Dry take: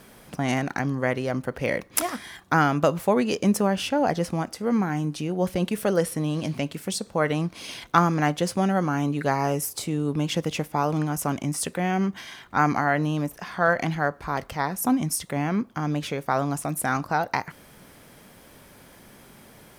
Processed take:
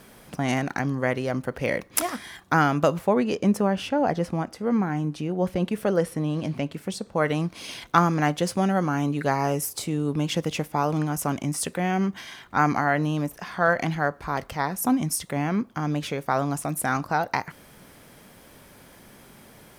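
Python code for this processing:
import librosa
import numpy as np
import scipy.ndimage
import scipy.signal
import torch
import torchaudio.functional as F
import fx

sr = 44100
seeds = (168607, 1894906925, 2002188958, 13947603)

y = fx.high_shelf(x, sr, hz=3400.0, db=-9.0, at=(2.99, 7.16))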